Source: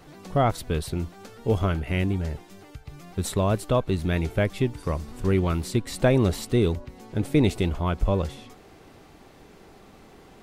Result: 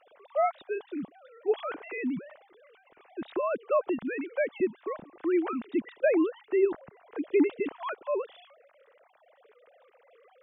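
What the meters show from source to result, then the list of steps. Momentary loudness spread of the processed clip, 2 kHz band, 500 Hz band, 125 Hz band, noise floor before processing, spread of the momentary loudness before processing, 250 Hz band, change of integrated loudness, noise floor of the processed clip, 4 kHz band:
13 LU, -3.5 dB, -1.5 dB, under -30 dB, -51 dBFS, 12 LU, -4.5 dB, -4.5 dB, -64 dBFS, under -15 dB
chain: formants replaced by sine waves; trim -5.5 dB

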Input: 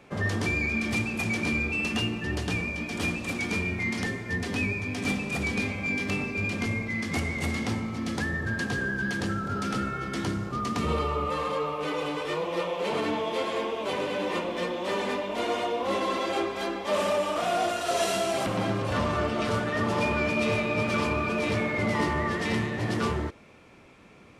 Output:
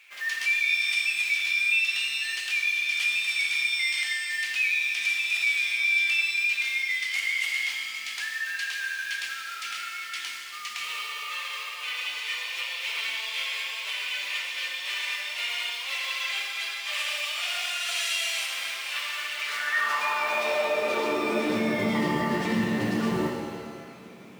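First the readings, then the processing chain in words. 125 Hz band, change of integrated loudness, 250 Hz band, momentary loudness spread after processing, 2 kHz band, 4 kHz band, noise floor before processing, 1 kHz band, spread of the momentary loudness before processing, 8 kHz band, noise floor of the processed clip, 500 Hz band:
under -10 dB, +2.0 dB, -4.0 dB, 9 LU, +5.5 dB, +8.0 dB, -40 dBFS, -4.0 dB, 4 LU, +4.0 dB, -38 dBFS, -5.5 dB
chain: companded quantiser 6-bit; high-pass sweep 2.4 kHz -> 190 Hz, 19.32–21.79 s; peak limiter -20.5 dBFS, peak gain reduction 9 dB; pitch-shifted reverb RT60 1.9 s, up +7 st, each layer -8 dB, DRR 2 dB

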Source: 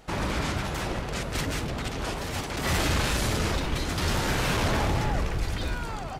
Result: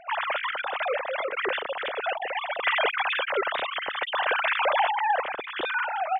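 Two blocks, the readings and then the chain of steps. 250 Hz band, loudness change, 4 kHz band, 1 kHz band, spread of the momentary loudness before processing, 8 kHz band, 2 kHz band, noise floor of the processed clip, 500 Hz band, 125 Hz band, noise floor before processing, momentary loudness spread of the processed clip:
-15.5 dB, +1.5 dB, +0.5 dB, +6.5 dB, 6 LU, under -40 dB, +6.0 dB, -38 dBFS, +3.0 dB, under -35 dB, -34 dBFS, 6 LU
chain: formants replaced by sine waves

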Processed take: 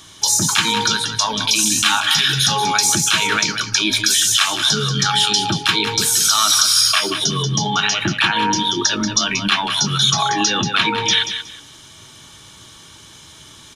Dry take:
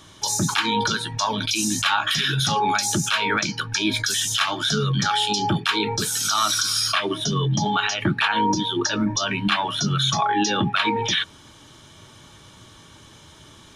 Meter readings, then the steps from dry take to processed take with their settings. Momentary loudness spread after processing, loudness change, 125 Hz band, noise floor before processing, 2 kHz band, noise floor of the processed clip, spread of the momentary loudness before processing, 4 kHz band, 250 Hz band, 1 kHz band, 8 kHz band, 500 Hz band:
5 LU, +6.0 dB, +0.5 dB, -48 dBFS, +4.5 dB, -43 dBFS, 3 LU, +7.5 dB, +0.5 dB, +2.5 dB, +9.0 dB, +0.5 dB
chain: treble shelf 2.1 kHz +9.5 dB; band-stop 580 Hz, Q 19; feedback delay 184 ms, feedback 22%, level -9 dB

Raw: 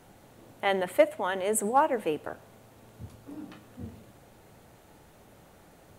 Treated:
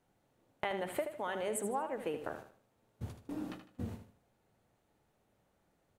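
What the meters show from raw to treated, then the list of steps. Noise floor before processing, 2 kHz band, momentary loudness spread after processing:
-56 dBFS, -9.5 dB, 11 LU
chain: gate -45 dBFS, range -22 dB; treble shelf 8.8 kHz -4.5 dB; compression 16:1, threshold -35 dBFS, peak gain reduction 21 dB; on a send: feedback delay 77 ms, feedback 32%, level -9 dB; on the sum: trim +2 dB

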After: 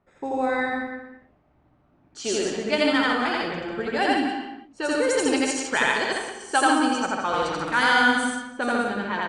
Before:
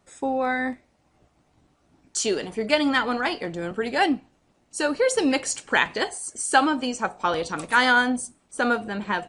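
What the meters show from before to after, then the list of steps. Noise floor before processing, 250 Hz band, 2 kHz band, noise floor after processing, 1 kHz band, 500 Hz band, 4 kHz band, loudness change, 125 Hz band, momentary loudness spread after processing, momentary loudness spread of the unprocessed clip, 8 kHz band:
-66 dBFS, +1.0 dB, +1.0 dB, -62 dBFS, +1.0 dB, +0.5 dB, +1.0 dB, +0.5 dB, -0.5 dB, 10 LU, 10 LU, -2.0 dB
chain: loudspeakers at several distances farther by 29 m 0 dB, 50 m -3 dB, 62 m -12 dB, 91 m -9 dB; gated-style reverb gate 360 ms flat, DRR 8.5 dB; level-controlled noise filter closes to 1.9 kHz, open at -14 dBFS; trim -4 dB

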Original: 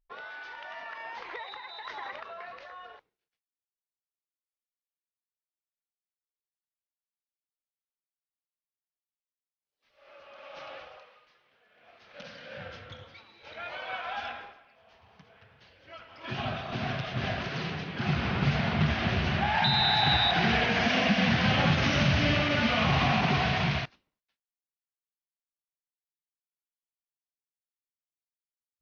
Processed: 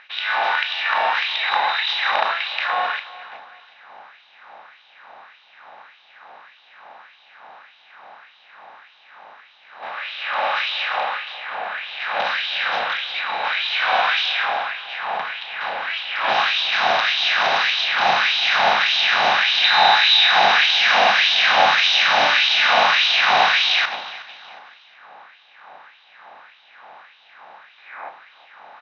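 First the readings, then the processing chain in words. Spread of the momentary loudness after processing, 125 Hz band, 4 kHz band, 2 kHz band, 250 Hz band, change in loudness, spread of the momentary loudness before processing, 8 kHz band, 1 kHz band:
14 LU, under -15 dB, +14.5 dB, +14.0 dB, -12.0 dB, +9.5 dB, 20 LU, no reading, +13.5 dB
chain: spectral levelling over time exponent 0.4; level-controlled noise filter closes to 1.5 kHz, open at -16 dBFS; time-frequency box 27.78–28.09 s, 220–2600 Hz +10 dB; bass shelf 240 Hz +6.5 dB; in parallel at 0 dB: compression, threshold -30 dBFS, peak gain reduction 16.5 dB; on the sum: LFO high-pass sine 1.7 Hz 750–3400 Hz; vibrato 3.6 Hz 6.6 cents; doubling 34 ms -12.5 dB; on a send: feedback delay 367 ms, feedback 37%, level -18 dB; on the sum: trim +2 dB

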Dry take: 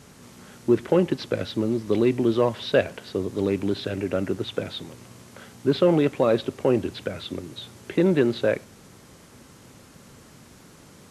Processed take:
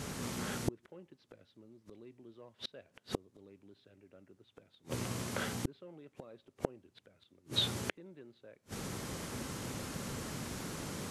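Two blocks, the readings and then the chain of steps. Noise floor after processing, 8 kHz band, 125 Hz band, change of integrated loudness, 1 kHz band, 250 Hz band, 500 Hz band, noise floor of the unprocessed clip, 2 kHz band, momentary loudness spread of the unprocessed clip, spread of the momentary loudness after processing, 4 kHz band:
-74 dBFS, no reading, -12.5 dB, -15.5 dB, -12.5 dB, -19.0 dB, -22.5 dB, -50 dBFS, -11.0 dB, 13 LU, 21 LU, -5.0 dB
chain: inverted gate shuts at -26 dBFS, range -41 dB; trim +7.5 dB

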